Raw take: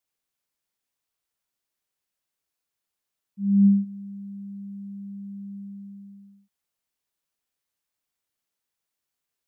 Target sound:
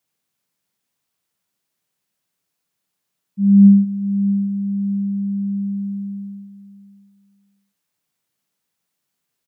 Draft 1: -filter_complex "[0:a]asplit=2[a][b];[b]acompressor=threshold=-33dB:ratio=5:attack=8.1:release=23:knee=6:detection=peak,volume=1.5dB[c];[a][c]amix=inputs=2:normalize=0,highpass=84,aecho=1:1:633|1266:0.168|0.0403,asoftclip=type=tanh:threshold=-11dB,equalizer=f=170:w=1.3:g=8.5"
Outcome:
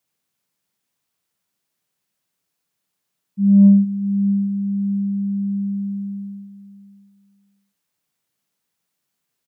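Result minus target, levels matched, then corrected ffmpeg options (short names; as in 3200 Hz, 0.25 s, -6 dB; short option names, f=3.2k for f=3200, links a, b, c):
soft clip: distortion +16 dB
-filter_complex "[0:a]asplit=2[a][b];[b]acompressor=threshold=-33dB:ratio=5:attack=8.1:release=23:knee=6:detection=peak,volume=1.5dB[c];[a][c]amix=inputs=2:normalize=0,highpass=84,aecho=1:1:633|1266:0.168|0.0403,asoftclip=type=tanh:threshold=-2dB,equalizer=f=170:w=1.3:g=8.5"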